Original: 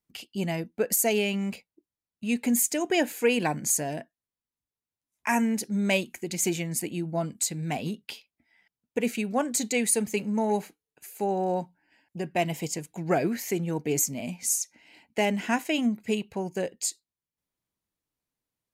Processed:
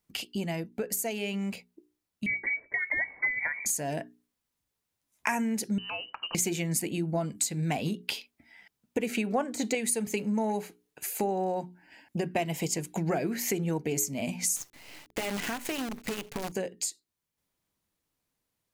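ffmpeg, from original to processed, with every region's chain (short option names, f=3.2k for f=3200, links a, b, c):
-filter_complex "[0:a]asettb=1/sr,asplit=3[a][b][c];[a]atrim=end=2.264[d];[b]atrim=start=2.26:end=3.66,asetpts=PTS-STARTPTS,afade=t=in:d=0.004:c=qsin,afade=t=out:st=1.396:d=0.004:c=qsin,equalizer=f=540:t=o:w=0.3:g=13.5,bandreject=f=50:t=h:w=6,bandreject=f=100:t=h:w=6,bandreject=f=150:t=h:w=6,bandreject=f=200:t=h:w=6,bandreject=f=250:t=h:w=6,bandreject=f=300:t=h:w=6,lowpass=f=2.1k:t=q:w=0.5098,lowpass=f=2.1k:t=q:w=0.6013,lowpass=f=2.1k:t=q:w=0.9,lowpass=f=2.1k:t=q:w=2.563,afreqshift=-2500[e];[c]atrim=start=3.656[f];[d][e]acrossfade=d=0.004:c1=hsin:c2=qsin[g];[g][f]acrossfade=d=0.004:c1=qsin:c2=hsin,asettb=1/sr,asplit=3[h][i][j];[h]atrim=end=5.784[k];[i]atrim=start=5.78:end=6.35,asetpts=PTS-STARTPTS,afade=t=in:d=0.004:c=qsin,afade=t=out:st=0.566:d=0.004:c=qsin,highpass=340,lowpass=f=2.7k:t=q:w=0.5098,lowpass=f=2.7k:t=q:w=0.6013,lowpass=f=2.7k:t=q:w=0.9,lowpass=f=2.7k:t=q:w=2.563,afreqshift=-3200,acompressor=threshold=-45dB:ratio=3:attack=3.2:release=140:knee=1:detection=peak[l];[j]atrim=start=6.346[m];[k][l]acrossfade=d=0.004:c1=hsin:c2=qsin[n];[n][m]acrossfade=d=0.004:c1=qsin:c2=hsin,asettb=1/sr,asplit=3[o][p][q];[o]atrim=end=9.094[r];[p]atrim=start=9.09:end=9.75,asetpts=PTS-STARTPTS,afade=t=in:d=0.004:c=qsin,afade=t=out:st=0.656:d=0.004:c=qsin,deesser=0.6,equalizer=f=820:w=0.31:g=7.5[s];[q]atrim=start=9.746[t];[r][s]acrossfade=d=0.004:c1=hsin:c2=qsin[u];[u][t]acrossfade=d=0.004:c1=qsin:c2=hsin,asettb=1/sr,asplit=3[v][w][x];[v]atrim=end=14.564[y];[w]atrim=start=14.56:end=16.52,asetpts=PTS-STARTPTS,afade=t=in:d=0.004:c=qsin,afade=t=out:st=1.956:d=0.004:c=qsin,aecho=1:1:7:0.37,atrim=end_sample=86436,acompressor=threshold=-35dB:ratio=6:attack=3.2:release=140:knee=1:detection=peak,acrusher=bits=7:dc=4:mix=0:aa=0.000001[z];[x]atrim=start=16.516[aa];[y][z]acrossfade=d=0.004:c1=hsin:c2=qsin[ab];[ab][aa]acrossfade=d=0.004:c1=qsin:c2=hsin,acompressor=threshold=-37dB:ratio=6,bandreject=f=60:t=h:w=6,bandreject=f=120:t=h:w=6,bandreject=f=180:t=h:w=6,bandreject=f=240:t=h:w=6,bandreject=f=300:t=h:w=6,bandreject=f=360:t=h:w=6,bandreject=f=420:t=h:w=6,dynaudnorm=f=650:g=11:m=3dB,volume=7dB"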